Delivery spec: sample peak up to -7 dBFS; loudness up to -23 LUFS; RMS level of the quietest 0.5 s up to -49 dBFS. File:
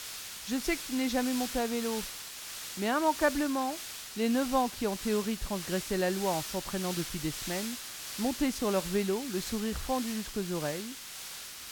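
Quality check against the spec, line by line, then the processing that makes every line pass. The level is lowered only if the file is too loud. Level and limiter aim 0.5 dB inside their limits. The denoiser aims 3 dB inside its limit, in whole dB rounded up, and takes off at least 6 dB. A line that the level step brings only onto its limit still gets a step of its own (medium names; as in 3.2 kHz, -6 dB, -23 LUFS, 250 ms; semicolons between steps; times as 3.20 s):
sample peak -13.5 dBFS: pass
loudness -32.0 LUFS: pass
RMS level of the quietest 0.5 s -44 dBFS: fail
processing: noise reduction 8 dB, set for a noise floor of -44 dBFS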